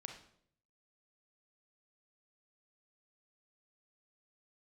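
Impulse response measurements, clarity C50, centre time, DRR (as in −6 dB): 6.5 dB, 23 ms, 3.0 dB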